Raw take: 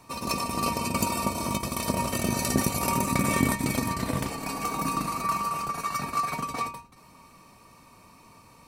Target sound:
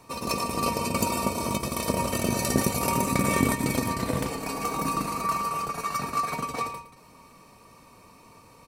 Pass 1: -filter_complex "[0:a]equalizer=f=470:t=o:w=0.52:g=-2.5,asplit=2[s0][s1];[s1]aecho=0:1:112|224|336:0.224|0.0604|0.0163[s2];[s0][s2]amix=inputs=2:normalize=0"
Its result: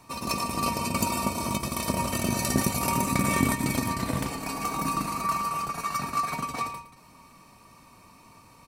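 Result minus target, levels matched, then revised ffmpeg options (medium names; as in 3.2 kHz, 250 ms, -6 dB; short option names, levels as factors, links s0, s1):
500 Hz band -4.0 dB
-filter_complex "[0:a]equalizer=f=470:t=o:w=0.52:g=5.5,asplit=2[s0][s1];[s1]aecho=0:1:112|224|336:0.224|0.0604|0.0163[s2];[s0][s2]amix=inputs=2:normalize=0"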